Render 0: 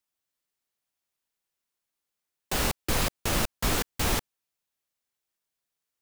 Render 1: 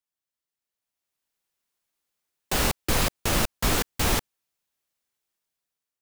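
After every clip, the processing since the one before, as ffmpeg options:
-af "dynaudnorm=f=450:g=5:m=11dB,volume=-6.5dB"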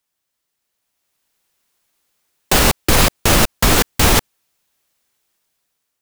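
-af "alimiter=level_in=14.5dB:limit=-1dB:release=50:level=0:latency=1,volume=-1dB"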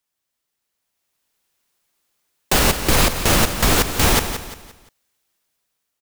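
-af "aecho=1:1:174|348|522|696:0.316|0.117|0.0433|0.016,volume=-3dB"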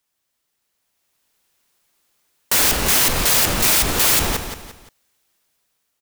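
-af "aeval=exprs='(mod(5.62*val(0)+1,2)-1)/5.62':c=same,volume=4.5dB"

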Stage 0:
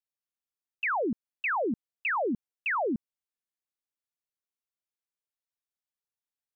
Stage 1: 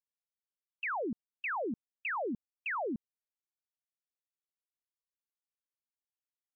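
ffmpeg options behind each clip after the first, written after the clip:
-af "afftdn=nr=15:nf=-49,volume=-6.5dB"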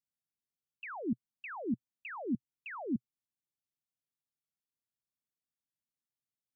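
-af "equalizer=f=125:t=o:w=1:g=12,equalizer=f=250:t=o:w=1:g=8,equalizer=f=500:t=o:w=1:g=-5,equalizer=f=1k:t=o:w=1:g=-3,equalizer=f=2k:t=o:w=1:g=-5,volume=-4dB"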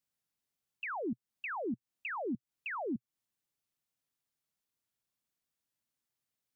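-af "acompressor=threshold=-41dB:ratio=4,volume=5.5dB"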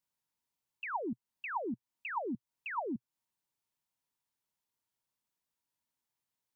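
-af "equalizer=f=940:t=o:w=0.22:g=11,volume=-1.5dB"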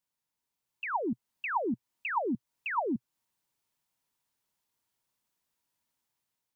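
-af "dynaudnorm=f=310:g=5:m=6dB"

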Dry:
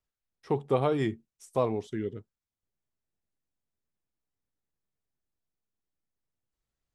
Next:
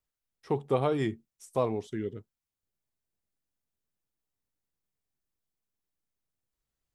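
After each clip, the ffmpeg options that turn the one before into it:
-af "highshelf=f=8.4k:g=4.5,volume=-1dB"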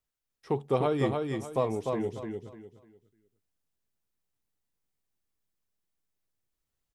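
-af "aecho=1:1:299|598|897|1196:0.631|0.177|0.0495|0.0139"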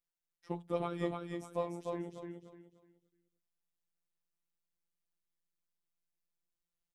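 -af "afftfilt=real='hypot(re,im)*cos(PI*b)':imag='0':win_size=1024:overlap=0.75,volume=-5dB"

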